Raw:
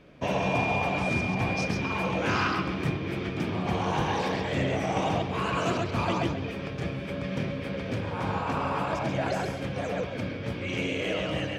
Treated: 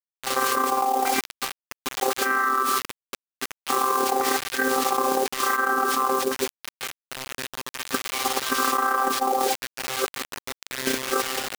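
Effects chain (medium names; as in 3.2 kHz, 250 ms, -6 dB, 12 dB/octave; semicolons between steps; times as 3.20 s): vocoder on a held chord bare fifth, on C4; LFO low-pass saw down 0.95 Hz 670–3000 Hz; resonant high shelf 2.1 kHz -14 dB, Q 3; gate -21 dBFS, range -46 dB; gain riding within 3 dB 2 s; echo from a far wall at 27 m, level -30 dB; companded quantiser 6-bit; tilt shelf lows -7.5 dB, about 1.1 kHz; level flattener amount 100%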